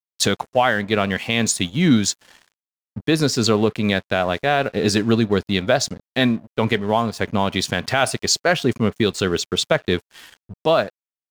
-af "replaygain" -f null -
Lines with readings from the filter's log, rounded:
track_gain = +0.1 dB
track_peak = 0.391